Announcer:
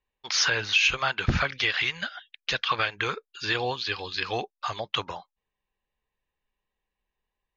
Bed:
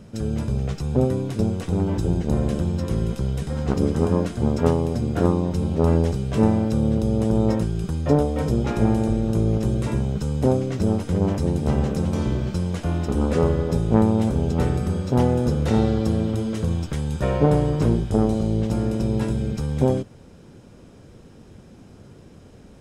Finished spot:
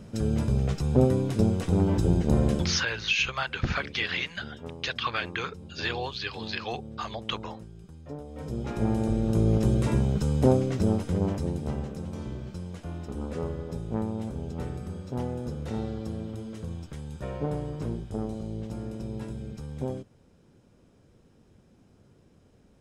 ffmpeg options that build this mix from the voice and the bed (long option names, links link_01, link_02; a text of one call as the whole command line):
ffmpeg -i stem1.wav -i stem2.wav -filter_complex "[0:a]adelay=2350,volume=-4dB[link_01];[1:a]volume=19.5dB,afade=type=out:start_time=2.5:duration=0.36:silence=0.0944061,afade=type=in:start_time=8.24:duration=1.41:silence=0.0944061,afade=type=out:start_time=10.42:duration=1.47:silence=0.251189[link_02];[link_01][link_02]amix=inputs=2:normalize=0" out.wav